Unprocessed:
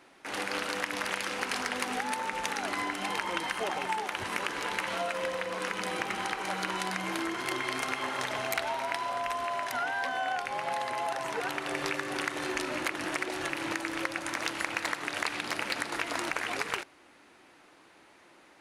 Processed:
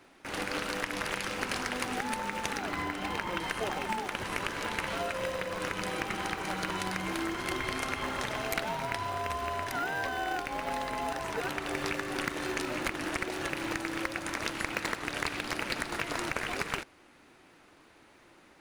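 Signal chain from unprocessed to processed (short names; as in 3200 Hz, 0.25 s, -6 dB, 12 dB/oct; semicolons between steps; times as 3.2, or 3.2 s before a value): 2.58–3.41 high shelf 6000 Hz -9.5 dB; in parallel at -8 dB: sample-rate reducer 1100 Hz, jitter 0%; on the sum: gain -1.5 dB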